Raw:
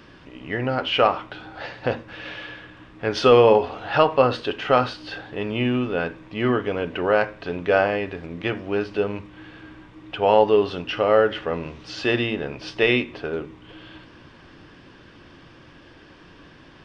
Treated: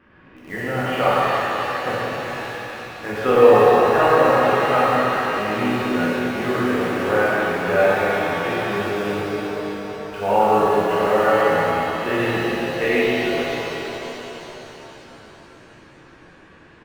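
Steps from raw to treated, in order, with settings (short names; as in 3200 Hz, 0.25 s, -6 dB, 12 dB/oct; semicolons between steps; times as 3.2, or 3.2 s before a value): resonant high shelf 3000 Hz -14 dB, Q 1.5; doubler 29 ms -11 dB; in parallel at -9 dB: bit-crush 5-bit; on the sum: shimmer reverb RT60 3.9 s, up +7 st, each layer -8 dB, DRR -8.5 dB; gain -10 dB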